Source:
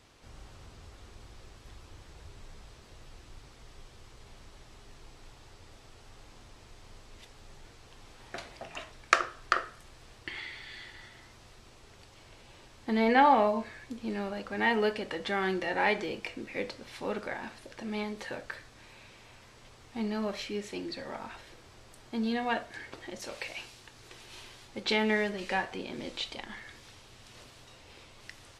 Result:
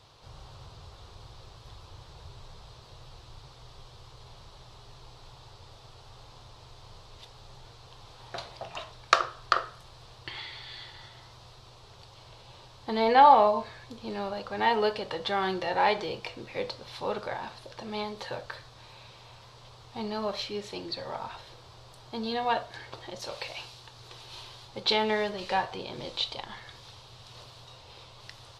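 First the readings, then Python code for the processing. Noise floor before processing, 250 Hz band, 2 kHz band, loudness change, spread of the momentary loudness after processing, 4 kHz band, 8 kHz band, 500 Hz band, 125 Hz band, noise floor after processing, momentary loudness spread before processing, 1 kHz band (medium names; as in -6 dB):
-55 dBFS, -4.0 dB, -2.0 dB, +3.0 dB, 22 LU, +5.0 dB, no reading, +2.5 dB, +1.5 dB, -52 dBFS, 22 LU, +5.5 dB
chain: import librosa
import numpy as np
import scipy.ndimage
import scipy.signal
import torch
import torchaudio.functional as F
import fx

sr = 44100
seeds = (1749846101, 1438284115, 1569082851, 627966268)

y = fx.graphic_eq_10(x, sr, hz=(125, 250, 500, 1000, 2000, 4000, 8000), db=(10, -8, 4, 8, -6, 10, -4))
y = y * 10.0 ** (-1.0 / 20.0)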